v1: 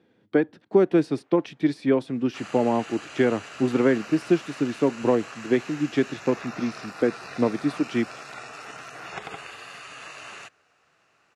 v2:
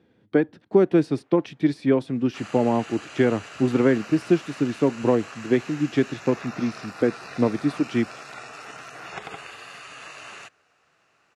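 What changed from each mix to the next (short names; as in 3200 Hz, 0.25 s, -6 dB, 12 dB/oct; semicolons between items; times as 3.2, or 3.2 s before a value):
speech: remove HPF 180 Hz 6 dB/oct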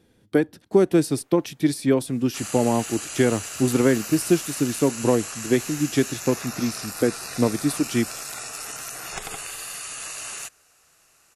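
master: remove BPF 110–2800 Hz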